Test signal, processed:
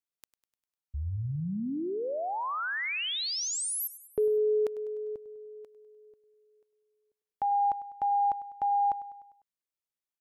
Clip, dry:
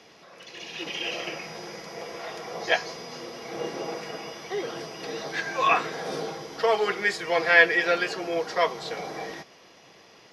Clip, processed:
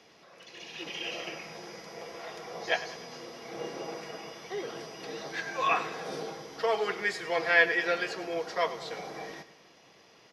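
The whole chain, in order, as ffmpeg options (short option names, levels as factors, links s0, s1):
-af "aecho=1:1:100|200|300|400|500:0.168|0.089|0.0472|0.025|0.0132,volume=0.531"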